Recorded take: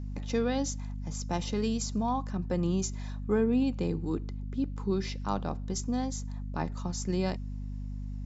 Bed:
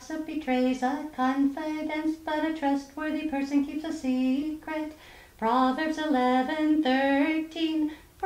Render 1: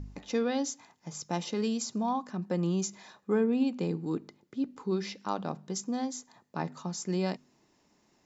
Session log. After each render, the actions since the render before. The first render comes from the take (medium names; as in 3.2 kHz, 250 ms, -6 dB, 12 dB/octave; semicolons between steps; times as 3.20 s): de-hum 50 Hz, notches 5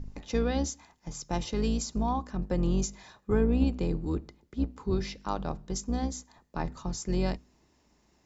octave divider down 2 oct, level +1 dB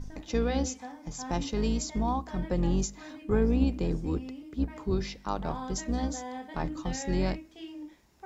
add bed -15.5 dB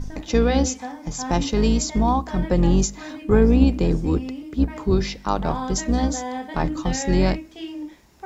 trim +9.5 dB